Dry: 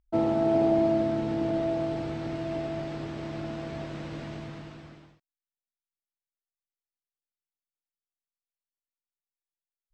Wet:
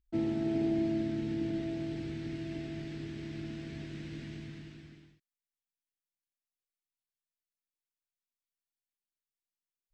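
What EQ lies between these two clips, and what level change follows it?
flat-topped bell 800 Hz −14 dB
−4.0 dB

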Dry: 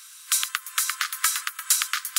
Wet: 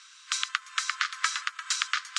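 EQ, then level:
low-pass filter 7,500 Hz 24 dB per octave
high-frequency loss of the air 76 metres
0.0 dB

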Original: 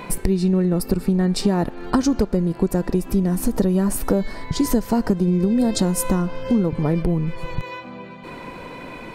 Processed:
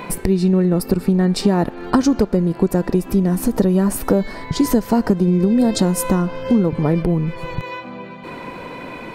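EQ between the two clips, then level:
low-shelf EQ 69 Hz −8.5 dB
parametric band 8,400 Hz −3.5 dB 1.9 octaves
+4.0 dB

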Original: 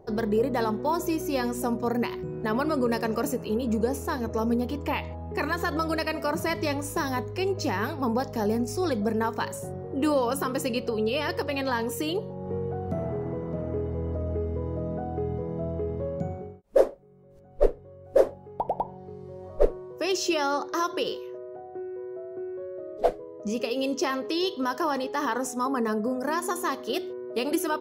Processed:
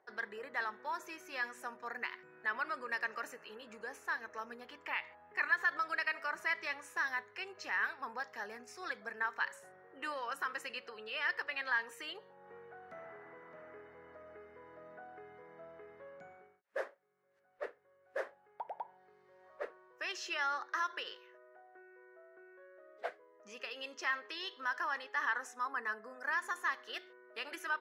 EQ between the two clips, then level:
resonant band-pass 1,700 Hz, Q 3
spectral tilt +2 dB per octave
0.0 dB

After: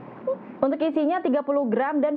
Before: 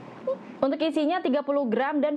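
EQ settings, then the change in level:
low-pass filter 1,900 Hz 12 dB per octave
+2.0 dB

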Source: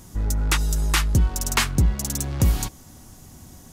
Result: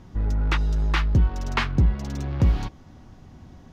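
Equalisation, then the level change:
high-frequency loss of the air 260 metres
0.0 dB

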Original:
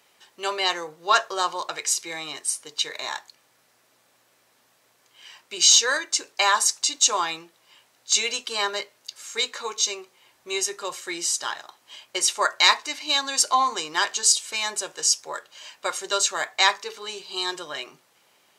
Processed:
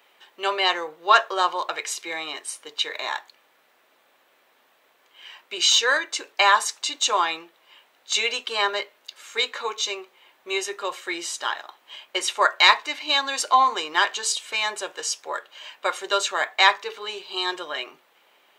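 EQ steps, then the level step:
high-pass filter 320 Hz 12 dB per octave
flat-topped bell 7,500 Hz −11 dB
+3.5 dB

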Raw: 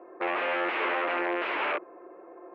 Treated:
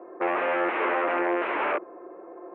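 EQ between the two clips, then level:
low-pass filter 3,300 Hz 6 dB per octave
high-frequency loss of the air 450 metres
+6.0 dB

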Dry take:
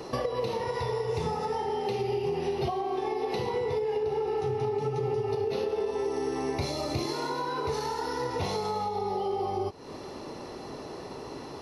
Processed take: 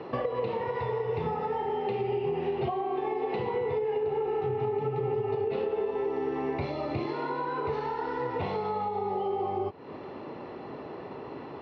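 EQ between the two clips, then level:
high-pass filter 96 Hz
low-pass filter 2,900 Hz 24 dB per octave
0.0 dB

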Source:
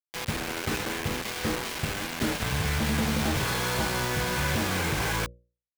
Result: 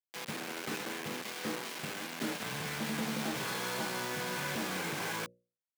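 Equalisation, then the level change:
high-pass filter 160 Hz 24 dB per octave
−7.5 dB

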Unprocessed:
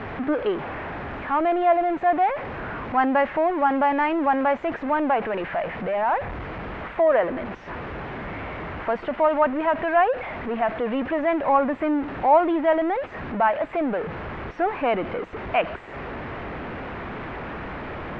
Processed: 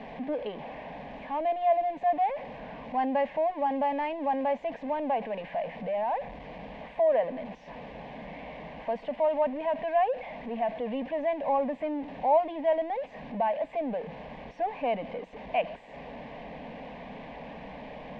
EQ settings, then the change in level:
low-shelf EQ 130 Hz −5.5 dB
phaser with its sweep stopped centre 360 Hz, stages 6
−4.5 dB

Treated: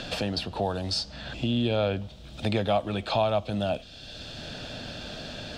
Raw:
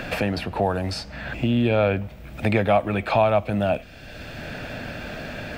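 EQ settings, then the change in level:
low-pass filter 7,700 Hz 12 dB per octave
high shelf with overshoot 2,800 Hz +8 dB, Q 3
dynamic equaliser 3,700 Hz, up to −4 dB, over −37 dBFS, Q 2.3
−5.5 dB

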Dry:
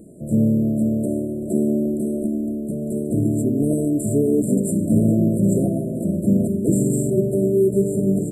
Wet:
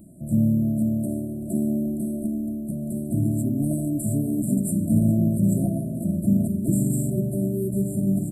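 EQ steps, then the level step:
high-shelf EQ 5,600 Hz +5 dB
phaser with its sweep stopped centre 1,700 Hz, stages 6
0.0 dB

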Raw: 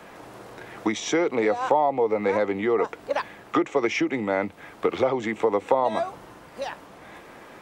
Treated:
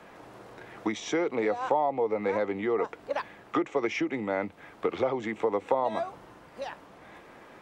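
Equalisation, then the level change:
high-shelf EQ 6,200 Hz −6.5 dB
−5.0 dB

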